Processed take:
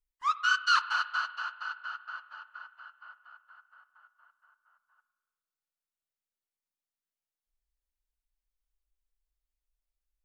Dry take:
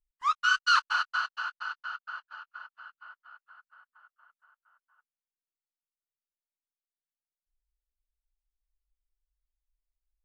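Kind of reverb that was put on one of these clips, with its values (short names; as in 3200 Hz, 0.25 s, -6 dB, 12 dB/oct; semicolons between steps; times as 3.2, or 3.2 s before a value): spring tank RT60 1.5 s, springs 33/55 ms, chirp 45 ms, DRR 13.5 dB; gain -1.5 dB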